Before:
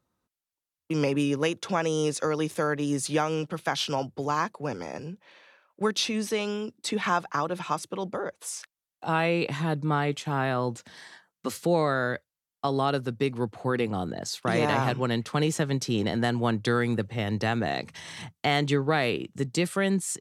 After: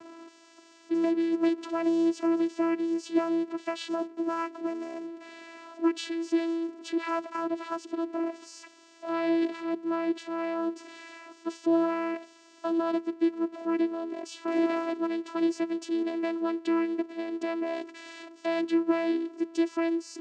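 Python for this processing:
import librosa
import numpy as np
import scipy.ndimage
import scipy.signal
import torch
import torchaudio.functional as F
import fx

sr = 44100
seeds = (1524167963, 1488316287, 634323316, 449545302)

y = x + 0.5 * 10.0 ** (-34.5 / 20.0) * np.sign(x)
y = fx.vocoder(y, sr, bands=8, carrier='saw', carrier_hz=332.0)
y = F.gain(torch.from_numpy(y), -2.0).numpy()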